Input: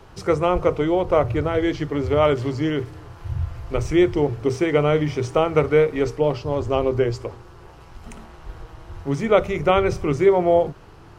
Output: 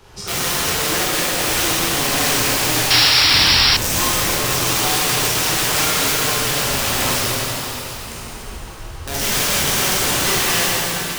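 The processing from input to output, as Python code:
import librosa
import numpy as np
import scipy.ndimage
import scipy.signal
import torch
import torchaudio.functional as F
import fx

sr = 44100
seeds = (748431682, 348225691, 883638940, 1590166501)

p1 = fx.over_compress(x, sr, threshold_db=-24.0, ratio=-0.5)
p2 = x + (p1 * 10.0 ** (2.5 / 20.0))
p3 = fx.highpass(p2, sr, hz=220.0, slope=24, at=(0.7, 1.32))
p4 = (np.mod(10.0 ** (12.0 / 20.0) * p3 + 1.0, 2.0) - 1.0) / 10.0 ** (12.0 / 20.0)
p5 = fx.rev_plate(p4, sr, seeds[0], rt60_s=3.7, hf_ratio=1.0, predelay_ms=0, drr_db=-9.0)
p6 = fx.spec_paint(p5, sr, seeds[1], shape='noise', start_s=2.9, length_s=0.87, low_hz=720.0, high_hz=5700.0, level_db=-6.0)
p7 = fx.high_shelf(p6, sr, hz=2500.0, db=11.0)
y = p7 * 10.0 ** (-14.5 / 20.0)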